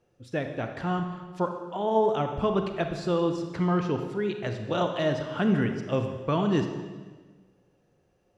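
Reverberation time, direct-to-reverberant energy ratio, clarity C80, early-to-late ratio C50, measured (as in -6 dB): 1.4 s, 5.5 dB, 8.0 dB, 6.5 dB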